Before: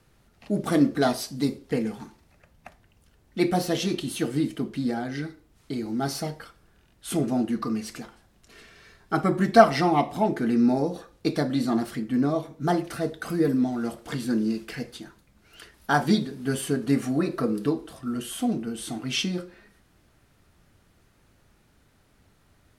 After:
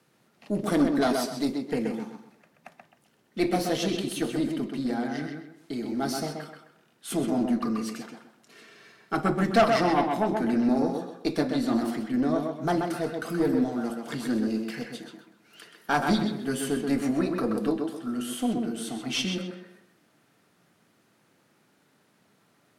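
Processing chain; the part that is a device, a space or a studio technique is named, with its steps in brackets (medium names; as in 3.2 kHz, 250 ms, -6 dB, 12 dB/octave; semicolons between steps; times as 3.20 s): high-pass 150 Hz 24 dB/octave; rockabilly slapback (valve stage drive 14 dB, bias 0.45; tape echo 129 ms, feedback 34%, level -3.5 dB, low-pass 3.5 kHz)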